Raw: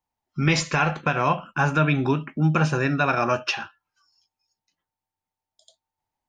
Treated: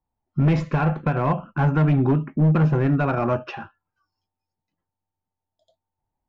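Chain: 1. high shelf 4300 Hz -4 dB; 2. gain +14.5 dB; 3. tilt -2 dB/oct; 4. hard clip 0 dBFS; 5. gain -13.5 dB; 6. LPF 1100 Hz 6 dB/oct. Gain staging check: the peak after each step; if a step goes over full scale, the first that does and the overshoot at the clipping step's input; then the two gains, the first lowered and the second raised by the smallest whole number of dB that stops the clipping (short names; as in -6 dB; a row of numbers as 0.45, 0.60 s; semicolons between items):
-8.0, +6.5, +9.5, 0.0, -13.5, -13.5 dBFS; step 2, 9.5 dB; step 2 +4.5 dB, step 5 -3.5 dB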